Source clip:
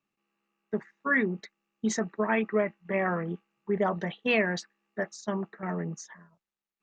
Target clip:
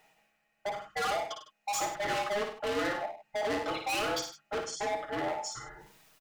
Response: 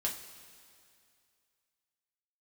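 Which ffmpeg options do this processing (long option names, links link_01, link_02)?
-filter_complex "[0:a]afftfilt=real='real(if(between(b,1,1008),(2*floor((b-1)/48)+1)*48-b,b),0)':imag='imag(if(between(b,1,1008),(2*floor((b-1)/48)+1)*48-b,b),0)*if(between(b,1,1008),-1,1)':win_size=2048:overlap=0.75,bandreject=frequency=50:width_type=h:width=6,bandreject=frequency=100:width_type=h:width=6,bandreject=frequency=150:width_type=h:width=6,bandreject=frequency=200:width_type=h:width=6,bandreject=frequency=250:width_type=h:width=6,bandreject=frequency=300:width_type=h:width=6,bandreject=frequency=350:width_type=h:width=6,aecho=1:1:6.4:0.67,acrossover=split=200|1500[link_01][link_02][link_03];[link_01]acompressor=threshold=-53dB:ratio=12[link_04];[link_04][link_02][link_03]amix=inputs=3:normalize=0,alimiter=limit=-17.5dB:level=0:latency=1:release=38,areverse,acompressor=mode=upward:threshold=-44dB:ratio=2.5,areverse,atempo=1.1,volume=34dB,asoftclip=hard,volume=-34dB,aecho=1:1:56|100|155:0.501|0.266|0.141,volume=3.5dB"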